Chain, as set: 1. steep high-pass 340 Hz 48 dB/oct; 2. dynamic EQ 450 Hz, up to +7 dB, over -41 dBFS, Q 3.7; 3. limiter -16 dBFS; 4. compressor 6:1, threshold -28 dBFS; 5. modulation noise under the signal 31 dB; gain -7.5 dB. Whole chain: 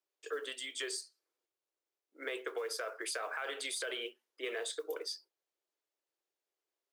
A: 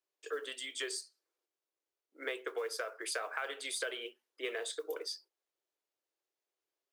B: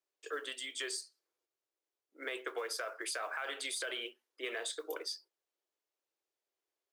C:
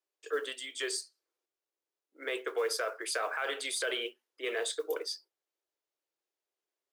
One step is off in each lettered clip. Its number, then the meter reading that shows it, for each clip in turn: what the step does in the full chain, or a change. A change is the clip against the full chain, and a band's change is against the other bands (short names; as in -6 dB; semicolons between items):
3, mean gain reduction 1.5 dB; 2, 500 Hz band -3.0 dB; 4, mean gain reduction 3.5 dB